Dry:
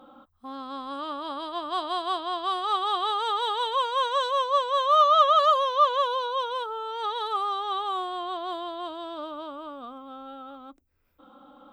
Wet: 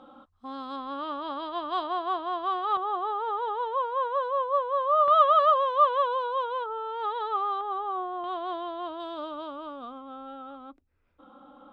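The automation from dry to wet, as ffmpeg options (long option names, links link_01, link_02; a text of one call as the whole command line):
ffmpeg -i in.wav -af "asetnsamples=nb_out_samples=441:pad=0,asendcmd='0.76 lowpass f 3200;1.87 lowpass f 2000;2.77 lowpass f 1100;5.08 lowpass f 2000;7.61 lowpass f 1200;8.24 lowpass f 2600;9 lowpass f 4800;10.01 lowpass f 3100',lowpass=6300" out.wav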